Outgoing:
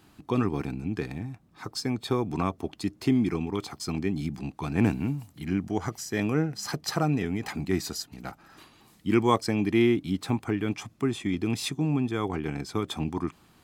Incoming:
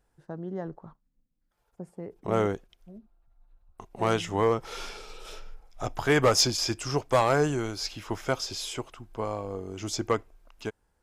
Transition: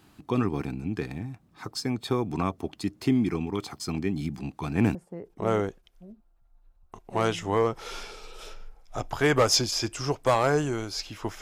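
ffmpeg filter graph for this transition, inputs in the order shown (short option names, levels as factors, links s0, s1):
-filter_complex "[0:a]apad=whole_dur=11.41,atrim=end=11.41,atrim=end=4.952[s0];[1:a]atrim=start=1.808:end=8.27[s1];[s0][s1]acrossfade=d=0.004:c1=hsin:c2=hsin"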